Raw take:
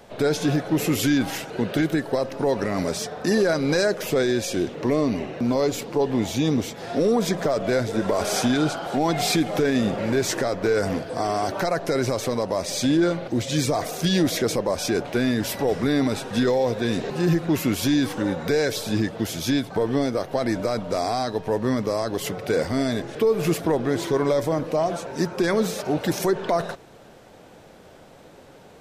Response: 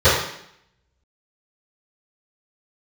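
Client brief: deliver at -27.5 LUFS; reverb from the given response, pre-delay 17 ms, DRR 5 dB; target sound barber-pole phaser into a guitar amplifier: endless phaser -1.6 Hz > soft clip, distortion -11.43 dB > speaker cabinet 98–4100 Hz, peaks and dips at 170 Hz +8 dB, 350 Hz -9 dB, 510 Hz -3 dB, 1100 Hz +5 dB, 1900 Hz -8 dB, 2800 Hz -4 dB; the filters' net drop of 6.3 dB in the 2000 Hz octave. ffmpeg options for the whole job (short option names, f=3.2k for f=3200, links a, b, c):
-filter_complex "[0:a]equalizer=f=2k:t=o:g=-4.5,asplit=2[a][b];[1:a]atrim=start_sample=2205,adelay=17[c];[b][c]afir=irnorm=-1:irlink=0,volume=-30.5dB[d];[a][d]amix=inputs=2:normalize=0,asplit=2[e][f];[f]afreqshift=-1.6[g];[e][g]amix=inputs=2:normalize=1,asoftclip=threshold=-22dB,highpass=98,equalizer=f=170:t=q:w=4:g=8,equalizer=f=350:t=q:w=4:g=-9,equalizer=f=510:t=q:w=4:g=-3,equalizer=f=1.1k:t=q:w=4:g=5,equalizer=f=1.9k:t=q:w=4:g=-8,equalizer=f=2.8k:t=q:w=4:g=-4,lowpass=f=4.1k:w=0.5412,lowpass=f=4.1k:w=1.3066,volume=2dB"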